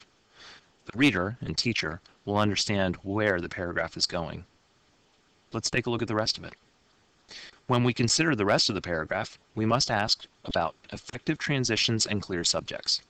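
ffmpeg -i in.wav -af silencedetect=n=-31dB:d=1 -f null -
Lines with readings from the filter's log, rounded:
silence_start: 4.38
silence_end: 5.54 | silence_duration: 1.17
silence_start: 6.49
silence_end: 7.69 | silence_duration: 1.21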